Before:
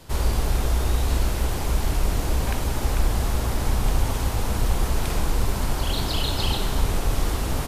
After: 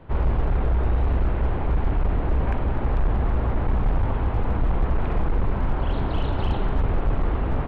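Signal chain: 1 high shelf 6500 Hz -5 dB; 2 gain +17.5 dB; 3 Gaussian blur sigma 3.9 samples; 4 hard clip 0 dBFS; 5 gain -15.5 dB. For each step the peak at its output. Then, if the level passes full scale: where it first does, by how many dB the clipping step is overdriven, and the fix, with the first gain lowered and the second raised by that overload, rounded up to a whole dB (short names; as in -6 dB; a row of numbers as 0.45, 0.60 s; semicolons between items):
-8.0, +9.5, +9.0, 0.0, -15.5 dBFS; step 2, 9.0 dB; step 2 +8.5 dB, step 5 -6.5 dB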